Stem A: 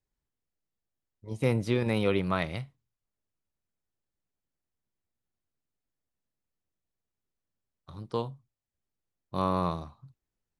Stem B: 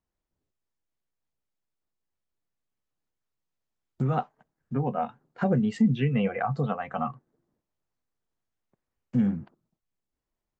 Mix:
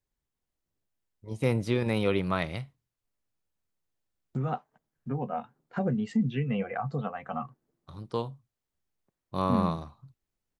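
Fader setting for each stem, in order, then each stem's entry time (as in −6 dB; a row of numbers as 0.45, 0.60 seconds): 0.0, −4.5 decibels; 0.00, 0.35 seconds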